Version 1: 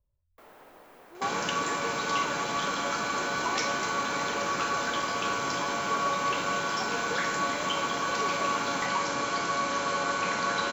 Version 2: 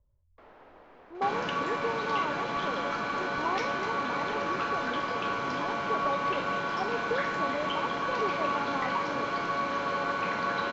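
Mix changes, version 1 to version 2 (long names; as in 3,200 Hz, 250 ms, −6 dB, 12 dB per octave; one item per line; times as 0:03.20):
speech +7.0 dB
master: add high-frequency loss of the air 230 metres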